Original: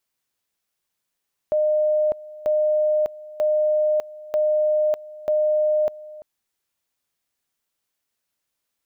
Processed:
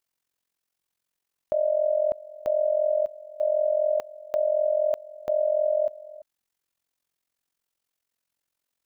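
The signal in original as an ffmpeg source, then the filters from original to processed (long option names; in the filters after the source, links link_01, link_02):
-f lavfi -i "aevalsrc='pow(10,(-16.5-19.5*gte(mod(t,0.94),0.6))/20)*sin(2*PI*610*t)':duration=4.7:sample_rate=44100"
-af "tremolo=f=44:d=0.824"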